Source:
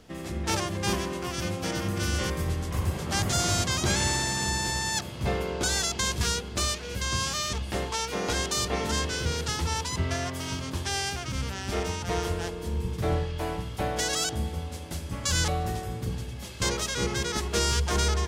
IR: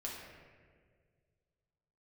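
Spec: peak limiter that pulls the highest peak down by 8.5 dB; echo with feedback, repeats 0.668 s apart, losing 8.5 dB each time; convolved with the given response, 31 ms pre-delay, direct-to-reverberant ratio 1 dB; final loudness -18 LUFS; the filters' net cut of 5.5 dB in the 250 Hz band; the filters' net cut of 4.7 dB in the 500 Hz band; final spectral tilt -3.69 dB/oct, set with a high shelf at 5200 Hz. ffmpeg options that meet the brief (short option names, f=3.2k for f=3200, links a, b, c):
-filter_complex "[0:a]equalizer=f=250:t=o:g=-7.5,equalizer=f=500:t=o:g=-3.5,highshelf=f=5.2k:g=-4,alimiter=limit=-23dB:level=0:latency=1,aecho=1:1:668|1336|2004|2672:0.376|0.143|0.0543|0.0206,asplit=2[a][b];[1:a]atrim=start_sample=2205,adelay=31[c];[b][c]afir=irnorm=-1:irlink=0,volume=-1dB[d];[a][d]amix=inputs=2:normalize=0,volume=12dB"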